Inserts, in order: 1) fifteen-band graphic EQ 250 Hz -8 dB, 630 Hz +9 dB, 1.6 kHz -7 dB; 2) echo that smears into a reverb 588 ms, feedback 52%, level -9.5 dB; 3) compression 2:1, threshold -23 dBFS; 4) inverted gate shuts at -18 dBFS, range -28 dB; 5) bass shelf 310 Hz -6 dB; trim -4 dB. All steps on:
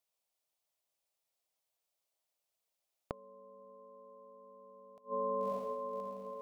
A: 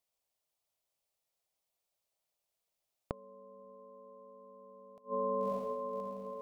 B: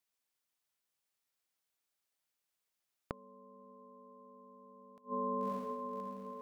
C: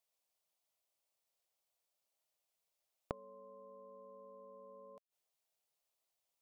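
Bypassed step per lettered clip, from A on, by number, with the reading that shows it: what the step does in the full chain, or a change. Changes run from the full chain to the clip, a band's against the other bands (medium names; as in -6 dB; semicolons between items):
5, 125 Hz band +3.5 dB; 1, loudness change -1.0 LU; 2, momentary loudness spread change -12 LU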